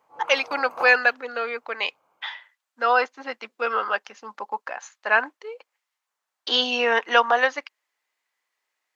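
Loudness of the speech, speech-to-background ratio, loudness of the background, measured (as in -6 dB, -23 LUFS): -22.5 LUFS, 15.0 dB, -37.5 LUFS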